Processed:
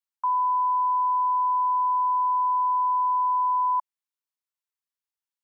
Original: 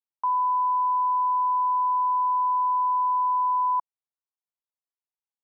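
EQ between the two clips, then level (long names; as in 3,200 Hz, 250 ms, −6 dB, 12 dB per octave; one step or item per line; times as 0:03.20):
Butterworth high-pass 880 Hz 36 dB per octave
+1.0 dB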